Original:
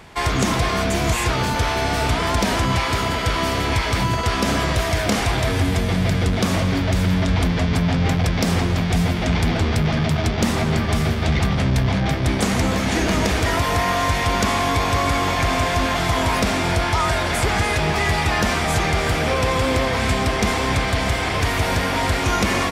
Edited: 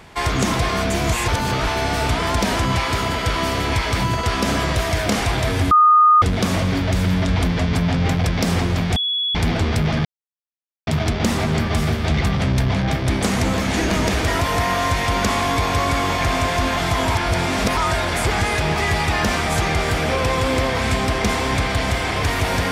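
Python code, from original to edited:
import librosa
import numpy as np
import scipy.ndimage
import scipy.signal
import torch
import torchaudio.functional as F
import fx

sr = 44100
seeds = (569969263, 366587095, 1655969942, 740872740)

y = fx.edit(x, sr, fx.reverse_span(start_s=1.28, length_s=0.39),
    fx.bleep(start_s=5.71, length_s=0.51, hz=1230.0, db=-8.5),
    fx.bleep(start_s=8.96, length_s=0.39, hz=3380.0, db=-18.5),
    fx.insert_silence(at_s=10.05, length_s=0.82),
    fx.reverse_span(start_s=16.33, length_s=0.62), tone=tone)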